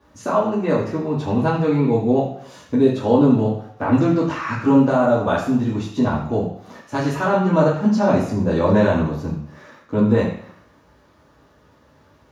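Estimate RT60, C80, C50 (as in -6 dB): 0.65 s, 8.5 dB, 5.5 dB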